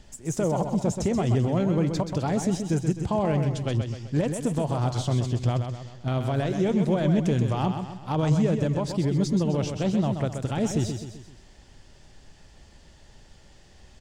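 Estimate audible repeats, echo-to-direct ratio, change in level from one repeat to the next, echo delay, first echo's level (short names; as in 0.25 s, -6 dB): 4, -6.0 dB, -6.5 dB, 0.129 s, -7.0 dB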